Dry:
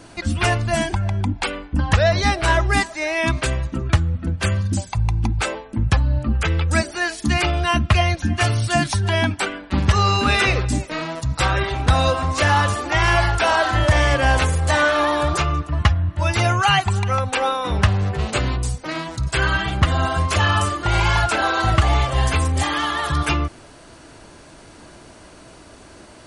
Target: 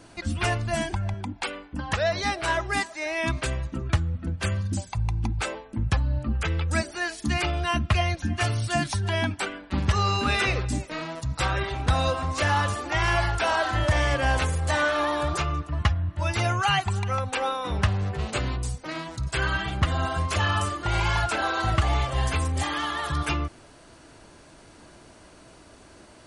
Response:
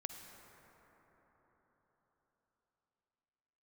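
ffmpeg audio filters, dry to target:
-filter_complex "[0:a]asettb=1/sr,asplit=3[s0][s1][s2];[s0]atrim=end=1.144[s3];[s1]atrim=start=1.14:end=3.06,asetpts=PTS-STARTPTS,afade=t=in:d=0.004:c=qsin,afade=t=out:st=1.916:d=0.004:c=qsin,lowshelf=f=140:g=-11.5[s4];[s2]atrim=start=3.056[s5];[s3][s4]acrossfade=d=0.004:c1=hsin:c2=qsin[s6];[s6][s5]acrossfade=d=0.004:c1=qsin:c2=hsin,volume=0.473"

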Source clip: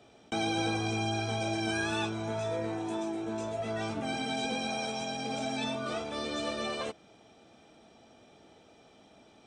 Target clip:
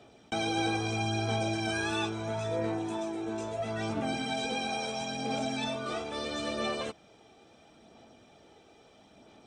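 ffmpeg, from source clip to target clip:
-af "aphaser=in_gain=1:out_gain=1:delay=2.6:decay=0.28:speed=0.75:type=sinusoidal"

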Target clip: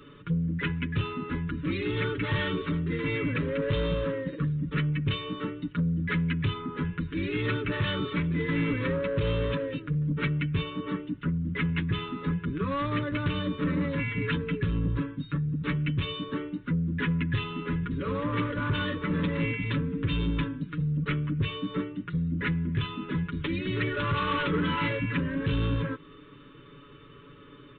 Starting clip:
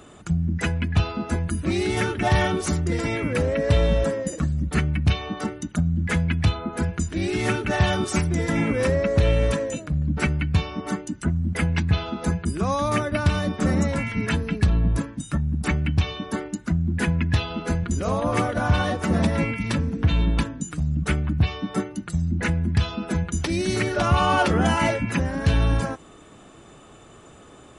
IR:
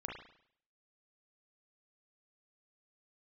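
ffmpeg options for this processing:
-af "aecho=1:1:7:0.97,aresample=8000,asoftclip=type=tanh:threshold=0.15,aresample=44100,asuperstop=centerf=730:order=4:qfactor=1.5,volume=0.596"

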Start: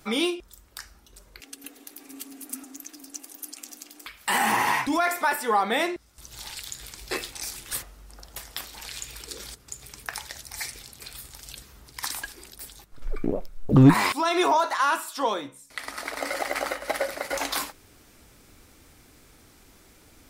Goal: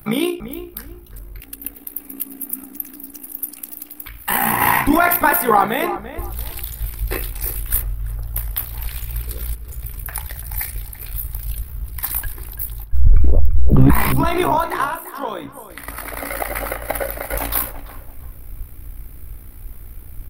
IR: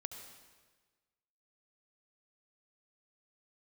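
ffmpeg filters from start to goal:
-filter_complex "[0:a]asubboost=boost=6.5:cutoff=56,acrossover=split=380[s0][s1];[s0]volume=5.96,asoftclip=hard,volume=0.168[s2];[s1]aexciter=amount=16:drive=6.9:freq=10000[s3];[s2][s3]amix=inputs=2:normalize=0,asettb=1/sr,asplit=3[s4][s5][s6];[s4]atrim=end=14.844[s7];[s5]atrim=start=14.84:end=15.88,asetpts=PTS-STARTPTS,afade=t=in:d=0.004:c=qsin,afade=t=out:st=1.036:d=0.004:c=qsin,acompressor=threshold=0.0562:ratio=6[s8];[s6]atrim=start=15.876[s9];[s7][s8]acrossfade=d=0.004:c1=hsin:c2=qsin[s10];[s10][s9]acrossfade=d=0.004:c1=qsin:c2=hsin,tremolo=f=60:d=0.667,asettb=1/sr,asplit=3[s11][s12][s13];[s11]atrim=end=4.614[s14];[s12]atrim=start=4.61:end=5.66,asetpts=PTS-STARTPTS,afade=t=in:d=0.004:c=qsin,afade=t=out:st=1.046:d=0.004:c=qsin,acontrast=29[s15];[s13]atrim=start=5.656[s16];[s14][s15]acrossfade=d=0.004:c1=hsin:c2=qsin[s17];[s17][s16]acrossfade=d=0.004:c1=qsin:c2=hsin,bass=f=250:g=10,treble=f=4000:g=-13,asplit=2[s18][s19];[s19]adelay=339,lowpass=f=1800:p=1,volume=0.266,asplit=2[s20][s21];[s21]adelay=339,lowpass=f=1800:p=1,volume=0.28,asplit=2[s22][s23];[s23]adelay=339,lowpass=f=1800:p=1,volume=0.28[s24];[s18][s20][s22][s24]amix=inputs=4:normalize=0,alimiter=level_in=2.37:limit=0.891:release=50:level=0:latency=1,volume=0.891"

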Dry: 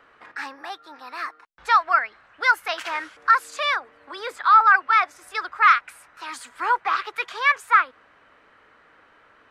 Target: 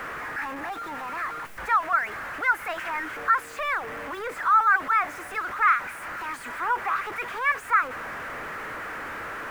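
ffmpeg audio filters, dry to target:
-af "aeval=exprs='val(0)+0.5*0.0794*sgn(val(0))':c=same,highshelf=f=2800:t=q:w=1.5:g=-11,volume=0.398"

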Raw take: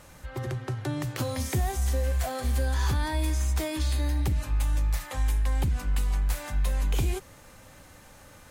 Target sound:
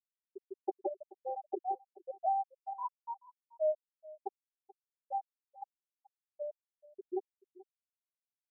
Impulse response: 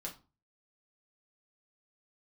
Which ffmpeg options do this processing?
-filter_complex "[0:a]equalizer=f=13000:w=0.36:g=-5.5,acompressor=threshold=0.0112:ratio=2,asuperstop=centerf=2200:order=20:qfactor=0.84,tremolo=f=1.4:d=0.46,highpass=470,aecho=1:1:5:0.44,asplit=2[s0][s1];[1:a]atrim=start_sample=2205,asetrate=48510,aresample=44100[s2];[s1][s2]afir=irnorm=-1:irlink=0,volume=0.501[s3];[s0][s3]amix=inputs=2:normalize=0,afftfilt=real='re*gte(hypot(re,im),0.0562)':imag='im*gte(hypot(re,im),0.0562)':win_size=1024:overlap=0.75,asplit=2[s4][s5];[s5]adelay=431.5,volume=0.1,highshelf=f=4000:g=-9.71[s6];[s4][s6]amix=inputs=2:normalize=0,volume=3.35"

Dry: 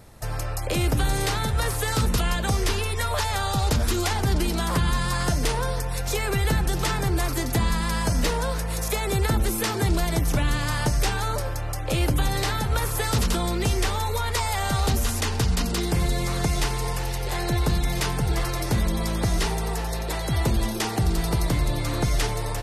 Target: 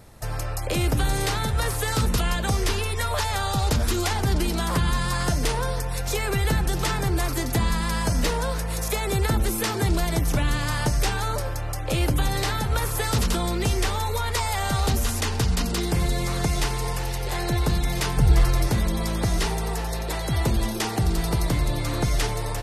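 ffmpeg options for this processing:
-filter_complex "[0:a]asettb=1/sr,asplit=3[s0][s1][s2];[s0]atrim=end=18.174[s3];[s1]atrim=start=18.17:end=18.68,asetpts=PTS-STARTPTS,afade=t=in:d=0.004:c=qsin,afade=t=out:st=0.506:d=0.004:c=qsin,lowshelf=f=120:g=11[s4];[s2]atrim=start=18.676[s5];[s3][s4]acrossfade=d=0.004:c1=hsin:c2=qsin[s6];[s6][s5]acrossfade=d=0.004:c1=qsin:c2=hsin"

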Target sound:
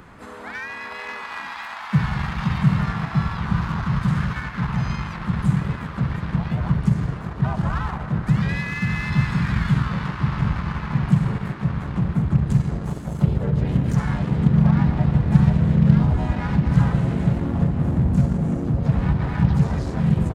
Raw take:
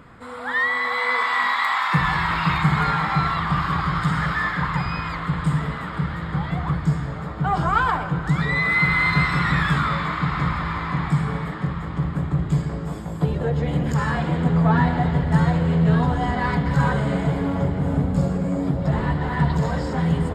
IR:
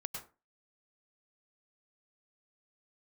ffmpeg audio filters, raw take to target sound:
-filter_complex "[0:a]acrossover=split=210[s0][s1];[s1]acompressor=threshold=0.01:ratio=2.5[s2];[s0][s2]amix=inputs=2:normalize=0,crystalizer=i=0.5:c=0,asplit=3[s3][s4][s5];[s4]asetrate=37084,aresample=44100,atempo=1.18921,volume=0.891[s6];[s5]asetrate=55563,aresample=44100,atempo=0.793701,volume=0.631[s7];[s3][s6][s7]amix=inputs=3:normalize=0,asplit=2[s8][s9];[s9]acrusher=bits=3:mix=0:aa=0.5,volume=0.355[s10];[s8][s10]amix=inputs=2:normalize=0,volume=0.794"

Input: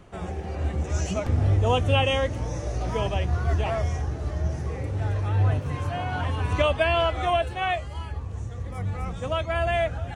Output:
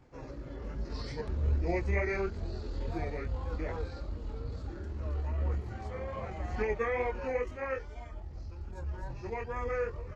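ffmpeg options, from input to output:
-af "flanger=delay=17:depth=2.4:speed=2.4,asetrate=32097,aresample=44100,atempo=1.37395,volume=0.501"

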